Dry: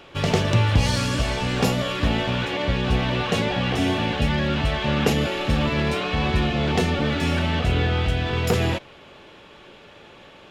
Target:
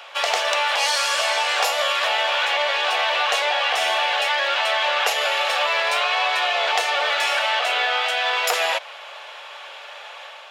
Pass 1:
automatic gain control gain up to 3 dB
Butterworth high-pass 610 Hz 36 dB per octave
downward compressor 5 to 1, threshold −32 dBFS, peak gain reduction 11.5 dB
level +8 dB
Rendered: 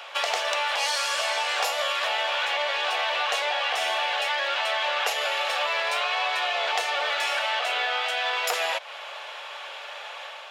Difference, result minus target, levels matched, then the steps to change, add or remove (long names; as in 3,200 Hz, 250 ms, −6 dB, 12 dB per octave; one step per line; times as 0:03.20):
downward compressor: peak gain reduction +5 dB
change: downward compressor 5 to 1, threshold −25.5 dBFS, peak gain reduction 6.5 dB